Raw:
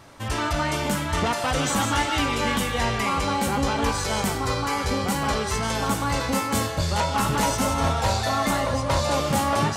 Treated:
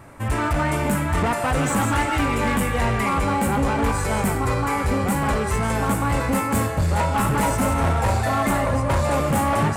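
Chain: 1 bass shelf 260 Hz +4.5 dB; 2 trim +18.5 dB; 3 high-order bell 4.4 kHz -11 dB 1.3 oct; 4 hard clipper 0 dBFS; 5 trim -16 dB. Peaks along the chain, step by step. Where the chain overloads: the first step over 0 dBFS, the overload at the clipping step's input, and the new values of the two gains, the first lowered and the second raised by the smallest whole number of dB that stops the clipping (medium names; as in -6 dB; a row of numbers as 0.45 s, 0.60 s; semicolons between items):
-9.5 dBFS, +9.0 dBFS, +9.0 dBFS, 0.0 dBFS, -16.0 dBFS; step 2, 9.0 dB; step 2 +9.5 dB, step 5 -7 dB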